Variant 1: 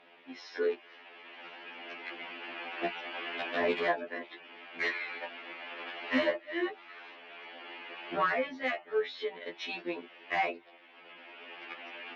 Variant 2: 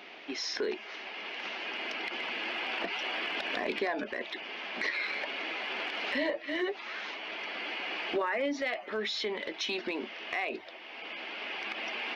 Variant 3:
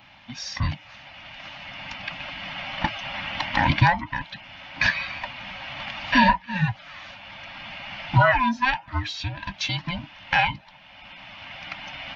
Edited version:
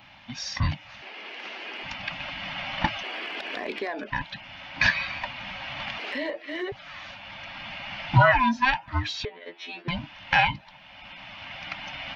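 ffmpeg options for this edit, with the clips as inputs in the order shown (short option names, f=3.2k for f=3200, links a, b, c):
-filter_complex "[1:a]asplit=3[a][b][c];[2:a]asplit=5[d][e][f][g][h];[d]atrim=end=1.022[i];[a]atrim=start=1.018:end=1.832[j];[e]atrim=start=1.828:end=3.032[k];[b]atrim=start=3.028:end=4.102[l];[f]atrim=start=4.098:end=5.982[m];[c]atrim=start=5.978:end=6.722[n];[g]atrim=start=6.718:end=9.252[o];[0:a]atrim=start=9.248:end=9.882[p];[h]atrim=start=9.878[q];[i][j]acrossfade=d=0.004:c1=hsin:c2=hsin[r];[r][k]acrossfade=d=0.004:c1=hsin:c2=hsin[s];[s][l]acrossfade=d=0.004:c1=hsin:c2=hsin[t];[t][m]acrossfade=d=0.004:c1=hsin:c2=hsin[u];[u][n]acrossfade=d=0.004:c1=hsin:c2=hsin[v];[v][o]acrossfade=d=0.004:c1=hsin:c2=hsin[w];[w][p]acrossfade=d=0.004:c1=hsin:c2=hsin[x];[x][q]acrossfade=d=0.004:c1=hsin:c2=hsin"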